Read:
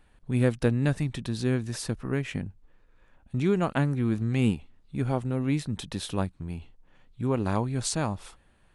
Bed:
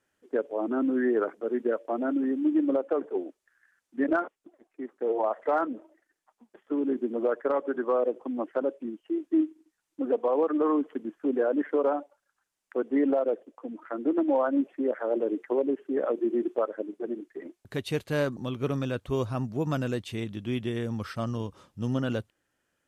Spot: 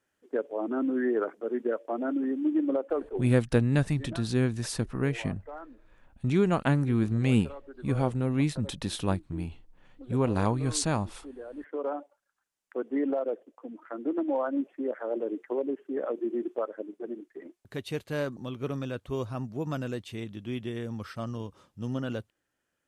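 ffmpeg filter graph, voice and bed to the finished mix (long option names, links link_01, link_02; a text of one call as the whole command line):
ffmpeg -i stem1.wav -i stem2.wav -filter_complex "[0:a]adelay=2900,volume=0.5dB[link_01];[1:a]volume=11dB,afade=type=out:start_time=3.05:duration=0.48:silence=0.177828,afade=type=in:start_time=11.52:duration=0.53:silence=0.223872[link_02];[link_01][link_02]amix=inputs=2:normalize=0" out.wav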